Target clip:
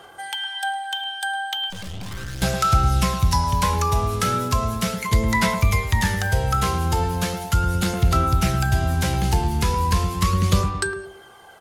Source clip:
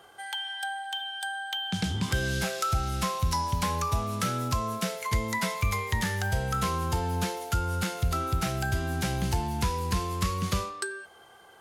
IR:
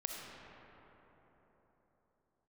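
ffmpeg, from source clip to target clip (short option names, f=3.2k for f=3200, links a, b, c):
-filter_complex "[0:a]asplit=2[a][b];[b]adelay=108,lowpass=f=850:p=1,volume=-6dB,asplit=2[c][d];[d]adelay=108,lowpass=f=850:p=1,volume=0.45,asplit=2[e][f];[f]adelay=108,lowpass=f=850:p=1,volume=0.45,asplit=2[g][h];[h]adelay=108,lowpass=f=850:p=1,volume=0.45,asplit=2[i][j];[j]adelay=108,lowpass=f=850:p=1,volume=0.45[k];[a][c][e][g][i][k]amix=inputs=6:normalize=0,asettb=1/sr,asplit=3[l][m][n];[l]atrim=end=1.704[o];[m]atrim=start=1.7:end=2.42,asetpts=PTS-STARTPTS,afade=t=in:d=0.004:c=qsin,afade=t=out:st=0.716:d=0.004:c=qsin,aeval=exprs='(tanh(89.1*val(0)+0.7)-tanh(0.7))/89.1':c=same[p];[n]atrim=start=2.416[q];[o][p]acrossfade=d=0.004:c1=hsin:c2=qsin[r];[r][q]acrossfade=d=0.004:c1=qsin:c2=hsin,aphaser=in_gain=1:out_gain=1:delay=2.5:decay=0.31:speed=0.37:type=sinusoidal,volume=6dB"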